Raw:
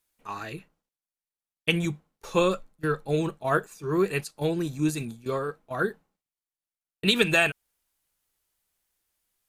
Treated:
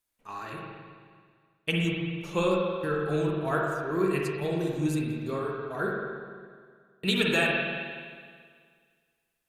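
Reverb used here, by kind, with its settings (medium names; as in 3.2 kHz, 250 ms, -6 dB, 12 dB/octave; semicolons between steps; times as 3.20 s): spring tank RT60 1.9 s, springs 42/53 ms, chirp 50 ms, DRR -2 dB; trim -5.5 dB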